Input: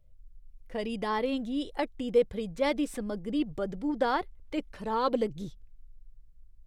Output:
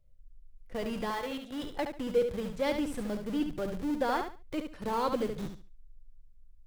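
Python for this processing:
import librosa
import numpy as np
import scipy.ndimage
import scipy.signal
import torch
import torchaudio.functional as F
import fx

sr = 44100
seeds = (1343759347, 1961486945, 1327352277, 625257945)

p1 = fx.highpass(x, sr, hz=fx.line((1.09, 1400.0), (1.62, 420.0)), slope=6, at=(1.09, 1.62), fade=0.02)
p2 = fx.schmitt(p1, sr, flips_db=-36.5)
p3 = p1 + (p2 * 10.0 ** (-6.5 / 20.0))
p4 = fx.echo_feedback(p3, sr, ms=71, feedback_pct=23, wet_db=-7.0)
p5 = fx.band_squash(p4, sr, depth_pct=40, at=(4.84, 5.46))
y = p5 * 10.0 ** (-4.5 / 20.0)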